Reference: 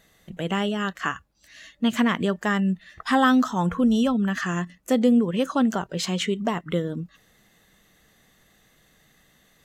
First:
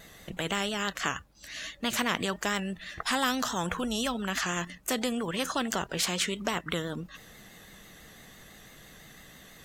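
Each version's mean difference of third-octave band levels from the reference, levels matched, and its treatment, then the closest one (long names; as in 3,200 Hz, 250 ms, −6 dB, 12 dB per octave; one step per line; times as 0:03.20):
10.0 dB: pitch vibrato 6 Hz 52 cents
every bin compressed towards the loudest bin 2 to 1
level −4.5 dB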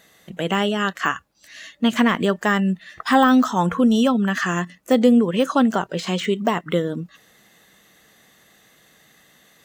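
1.5 dB: high-pass filter 240 Hz 6 dB per octave
de-essing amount 85%
level +6.5 dB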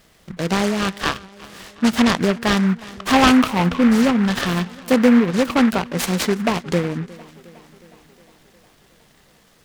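8.0 dB: on a send: tape delay 361 ms, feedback 67%, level −20 dB, low-pass 4,500 Hz
on the sum: short delay modulated by noise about 1,400 Hz, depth 0.099 ms
level +5.5 dB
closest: second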